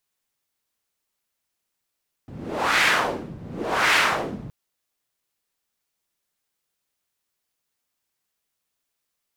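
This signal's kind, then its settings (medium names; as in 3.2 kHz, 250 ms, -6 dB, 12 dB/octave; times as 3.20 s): wind-like swept noise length 2.22 s, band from 150 Hz, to 2 kHz, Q 1.5, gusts 2, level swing 19.5 dB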